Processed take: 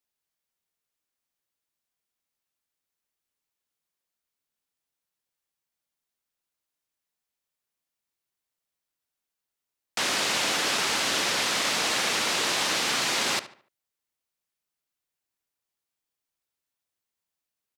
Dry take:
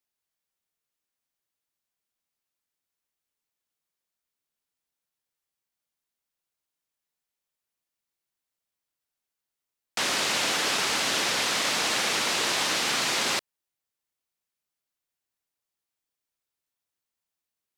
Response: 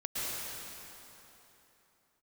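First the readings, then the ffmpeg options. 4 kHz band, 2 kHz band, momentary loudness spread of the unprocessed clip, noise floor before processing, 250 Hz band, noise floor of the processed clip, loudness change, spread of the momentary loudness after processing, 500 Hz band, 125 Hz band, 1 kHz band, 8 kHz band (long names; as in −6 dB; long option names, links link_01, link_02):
0.0 dB, 0.0 dB, 3 LU, below −85 dBFS, +0.5 dB, below −85 dBFS, 0.0 dB, 3 LU, 0.0 dB, 0.0 dB, 0.0 dB, 0.0 dB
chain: -filter_complex "[0:a]asplit=2[link_01][link_02];[link_02]adelay=73,lowpass=frequency=3400:poles=1,volume=-14dB,asplit=2[link_03][link_04];[link_04]adelay=73,lowpass=frequency=3400:poles=1,volume=0.38,asplit=2[link_05][link_06];[link_06]adelay=73,lowpass=frequency=3400:poles=1,volume=0.38,asplit=2[link_07][link_08];[link_08]adelay=73,lowpass=frequency=3400:poles=1,volume=0.38[link_09];[link_01][link_03][link_05][link_07][link_09]amix=inputs=5:normalize=0"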